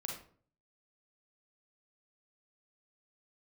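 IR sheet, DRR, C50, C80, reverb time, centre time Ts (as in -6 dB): -0.5 dB, 3.0 dB, 9.0 dB, 0.50 s, 35 ms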